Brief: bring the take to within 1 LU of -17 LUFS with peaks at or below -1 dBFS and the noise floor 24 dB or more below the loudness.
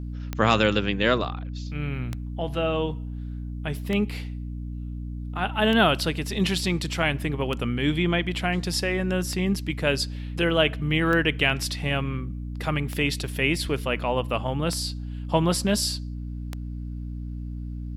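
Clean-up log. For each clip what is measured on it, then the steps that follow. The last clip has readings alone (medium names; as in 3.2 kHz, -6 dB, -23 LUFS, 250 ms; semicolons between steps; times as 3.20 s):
clicks found 10; hum 60 Hz; highest harmonic 300 Hz; hum level -30 dBFS; loudness -26.0 LUFS; peak level -4.5 dBFS; loudness target -17.0 LUFS
-> de-click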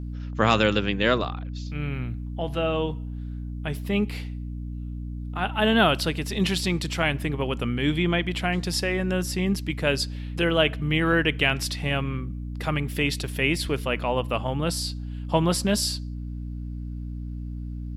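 clicks found 0; hum 60 Hz; highest harmonic 300 Hz; hum level -30 dBFS
-> hum notches 60/120/180/240/300 Hz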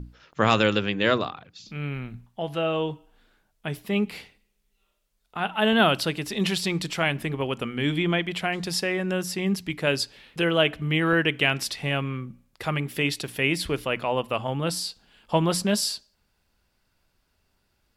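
hum not found; loudness -25.5 LUFS; peak level -4.5 dBFS; loudness target -17.0 LUFS
-> trim +8.5 dB; peak limiter -1 dBFS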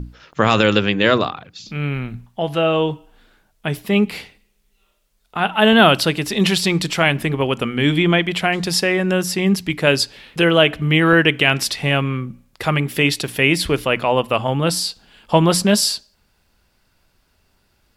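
loudness -17.5 LUFS; peak level -1.0 dBFS; noise floor -63 dBFS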